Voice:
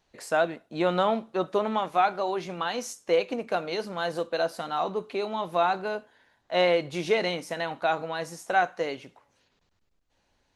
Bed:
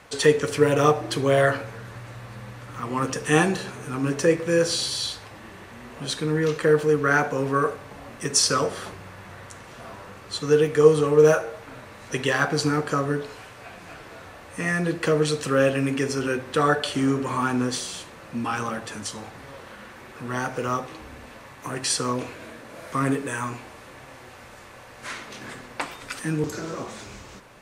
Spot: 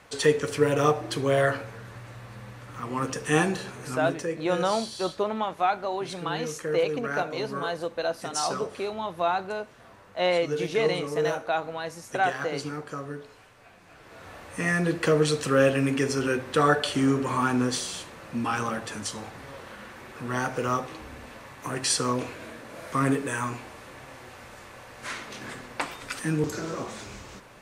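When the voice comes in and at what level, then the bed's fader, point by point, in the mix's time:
3.65 s, -1.5 dB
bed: 3.93 s -3.5 dB
4.28 s -11.5 dB
13.89 s -11.5 dB
14.33 s -0.5 dB

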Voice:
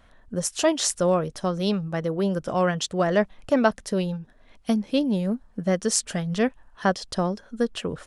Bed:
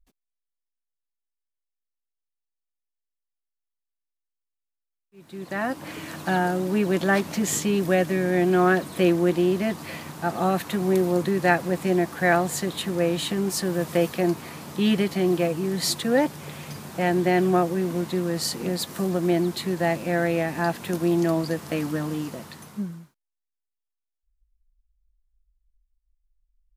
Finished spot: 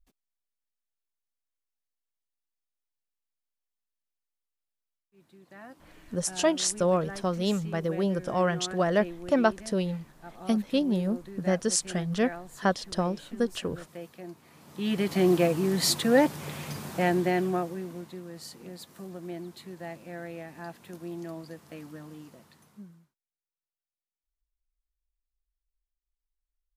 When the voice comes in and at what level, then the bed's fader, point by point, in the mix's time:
5.80 s, -3.0 dB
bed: 4.95 s -2.5 dB
5.42 s -20 dB
14.42 s -20 dB
15.19 s 0 dB
16.9 s 0 dB
18.22 s -16.5 dB

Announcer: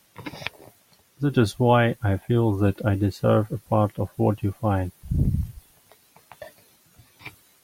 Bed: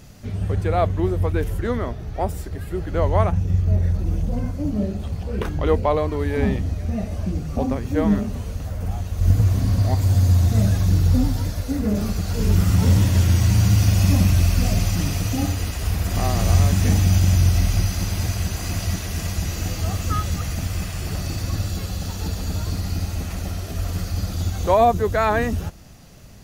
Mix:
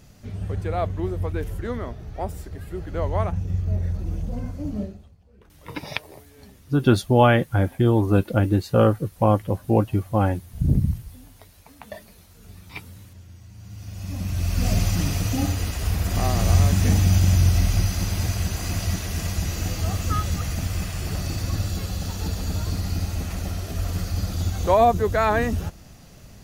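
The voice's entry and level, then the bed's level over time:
5.50 s, +2.5 dB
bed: 4.81 s -5.5 dB
5.17 s -28.5 dB
13.52 s -28.5 dB
14.71 s -1 dB

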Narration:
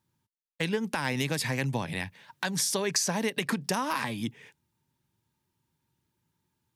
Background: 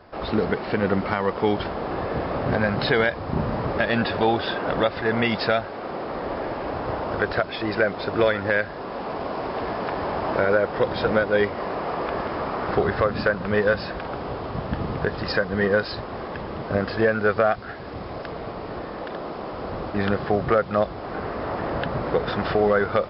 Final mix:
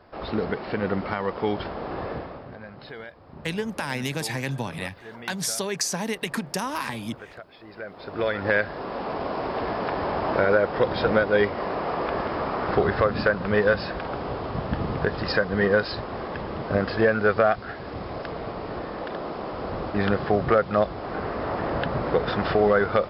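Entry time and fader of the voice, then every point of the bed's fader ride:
2.85 s, +0.5 dB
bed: 2.1 s -4 dB
2.54 s -19.5 dB
7.68 s -19.5 dB
8.49 s 0 dB

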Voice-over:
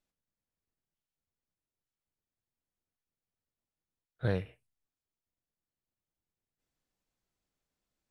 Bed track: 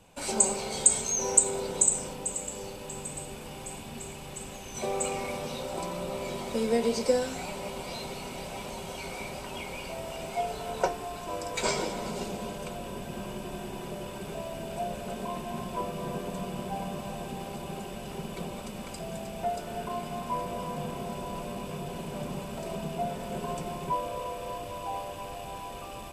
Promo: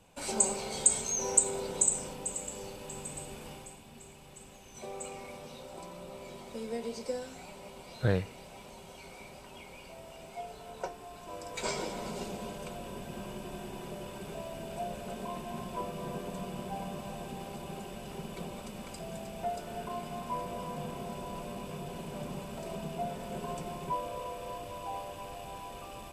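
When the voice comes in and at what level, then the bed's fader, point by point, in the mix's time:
3.80 s, +3.0 dB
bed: 3.51 s -3.5 dB
3.77 s -11 dB
10.91 s -11 dB
11.98 s -4 dB

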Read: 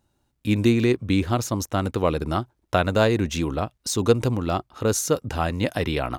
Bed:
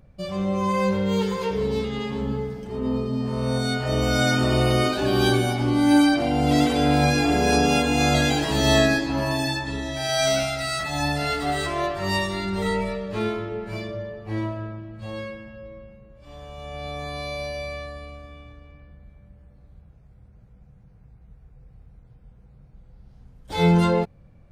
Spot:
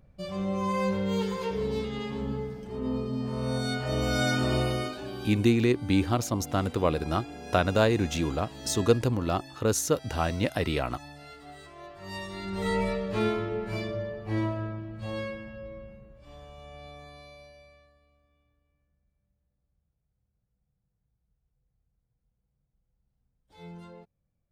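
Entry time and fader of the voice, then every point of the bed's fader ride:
4.80 s, -3.5 dB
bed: 4.56 s -5.5 dB
5.39 s -22 dB
11.75 s -22 dB
12.85 s -1 dB
15.97 s -1 dB
18 s -27.5 dB

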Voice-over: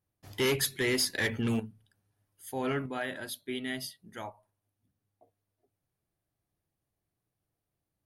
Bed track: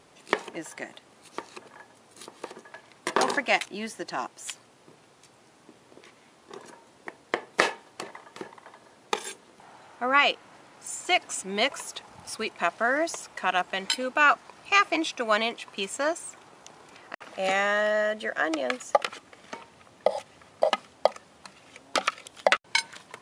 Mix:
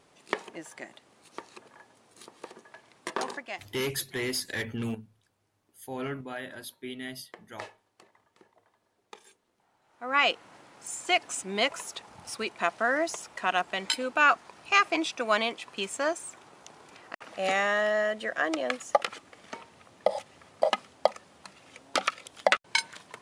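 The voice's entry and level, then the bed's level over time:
3.35 s, -3.0 dB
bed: 3.04 s -5 dB
3.77 s -20 dB
9.8 s -20 dB
10.23 s -1.5 dB

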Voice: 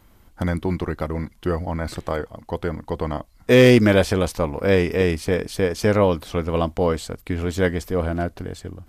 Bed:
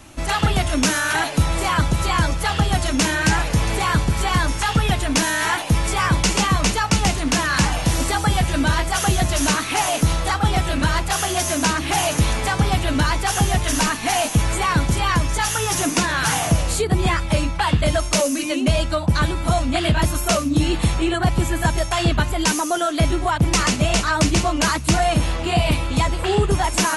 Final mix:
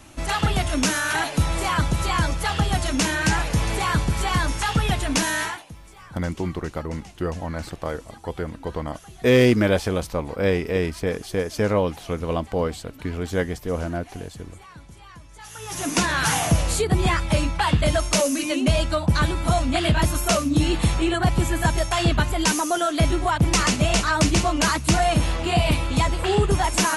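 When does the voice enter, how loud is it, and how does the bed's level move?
5.75 s, -3.5 dB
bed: 5.4 s -3 dB
5.76 s -26 dB
15.3 s -26 dB
15.98 s -1.5 dB

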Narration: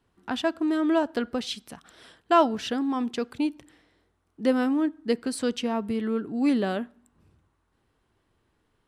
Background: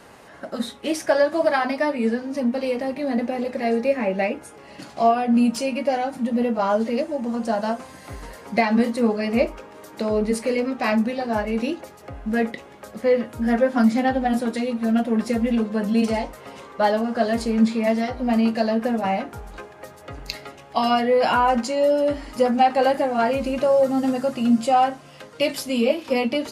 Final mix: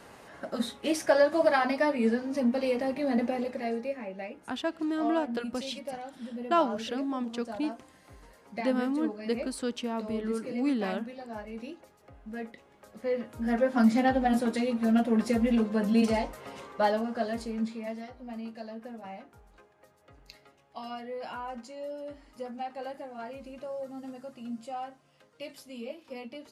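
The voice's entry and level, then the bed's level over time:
4.20 s, -5.5 dB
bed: 3.29 s -4 dB
4.1 s -16.5 dB
12.57 s -16.5 dB
13.94 s -4 dB
16.63 s -4 dB
18.26 s -20 dB

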